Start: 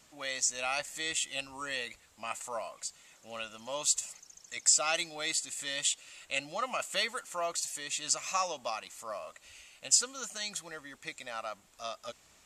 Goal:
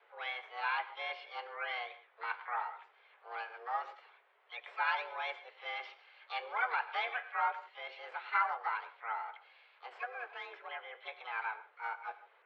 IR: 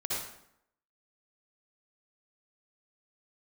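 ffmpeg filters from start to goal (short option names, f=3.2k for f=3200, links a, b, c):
-filter_complex "[0:a]aeval=exprs='0.316*(cos(1*acos(clip(val(0)/0.316,-1,1)))-cos(1*PI/2))+0.00398*(cos(8*acos(clip(val(0)/0.316,-1,1)))-cos(8*PI/2))':c=same,highpass=f=190:t=q:w=0.5412,highpass=f=190:t=q:w=1.307,lowpass=f=2k:t=q:w=0.5176,lowpass=f=2k:t=q:w=0.7071,lowpass=f=2k:t=q:w=1.932,afreqshift=240,flanger=delay=6.9:depth=6.4:regen=-69:speed=0.22:shape=sinusoidal,asplit=2[a][b];[1:a]atrim=start_sample=2205,afade=t=out:st=0.21:d=0.01,atrim=end_sample=9702,adelay=21[c];[b][c]afir=irnorm=-1:irlink=0,volume=-18dB[d];[a][d]amix=inputs=2:normalize=0,asplit=3[e][f][g];[f]asetrate=35002,aresample=44100,atempo=1.25992,volume=-15dB[h];[g]asetrate=66075,aresample=44100,atempo=0.66742,volume=-7dB[i];[e][h][i]amix=inputs=3:normalize=0,volume=4.5dB"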